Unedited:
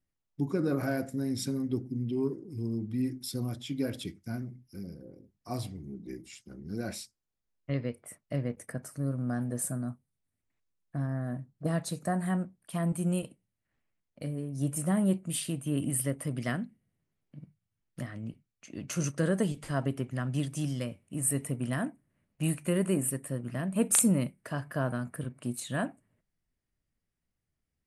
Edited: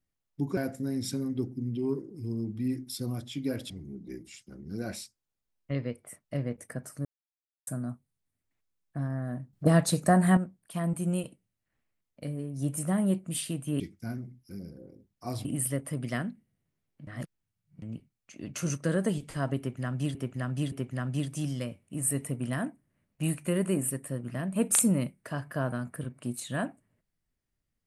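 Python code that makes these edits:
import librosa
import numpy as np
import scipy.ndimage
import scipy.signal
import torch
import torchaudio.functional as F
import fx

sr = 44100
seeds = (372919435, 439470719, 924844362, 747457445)

y = fx.edit(x, sr, fx.cut(start_s=0.57, length_s=0.34),
    fx.move(start_s=4.04, length_s=1.65, to_s=15.79),
    fx.silence(start_s=9.04, length_s=0.62),
    fx.clip_gain(start_s=11.52, length_s=0.84, db=8.5),
    fx.reverse_span(start_s=17.41, length_s=0.75),
    fx.repeat(start_s=19.92, length_s=0.57, count=3), tone=tone)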